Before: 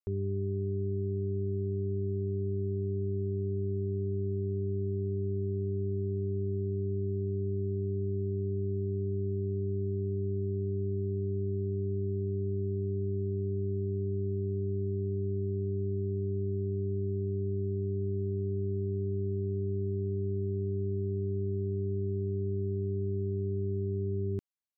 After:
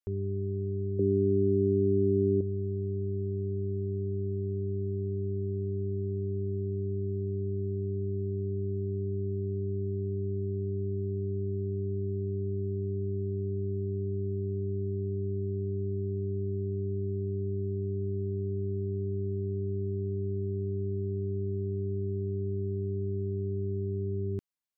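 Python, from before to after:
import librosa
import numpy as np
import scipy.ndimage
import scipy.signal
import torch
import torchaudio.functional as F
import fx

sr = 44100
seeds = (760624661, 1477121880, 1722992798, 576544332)

y = fx.small_body(x, sr, hz=(290.0, 460.0), ring_ms=25, db=15, at=(0.99, 2.41))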